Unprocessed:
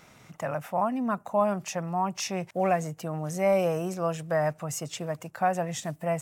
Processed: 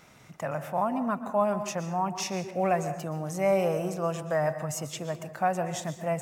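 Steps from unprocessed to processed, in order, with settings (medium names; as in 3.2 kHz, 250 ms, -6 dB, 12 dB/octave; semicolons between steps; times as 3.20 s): plate-style reverb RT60 0.74 s, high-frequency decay 0.65×, pre-delay 110 ms, DRR 10 dB; trim -1 dB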